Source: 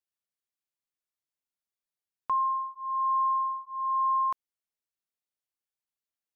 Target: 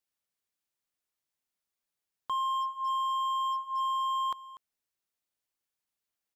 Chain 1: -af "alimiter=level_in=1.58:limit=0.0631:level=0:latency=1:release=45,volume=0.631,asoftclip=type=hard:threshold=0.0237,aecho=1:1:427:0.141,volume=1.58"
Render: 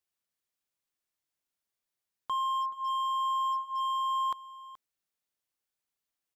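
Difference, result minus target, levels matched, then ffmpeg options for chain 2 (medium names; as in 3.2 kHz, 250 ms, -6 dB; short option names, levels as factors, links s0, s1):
echo 184 ms late
-af "alimiter=level_in=1.58:limit=0.0631:level=0:latency=1:release=45,volume=0.631,asoftclip=type=hard:threshold=0.0237,aecho=1:1:243:0.141,volume=1.58"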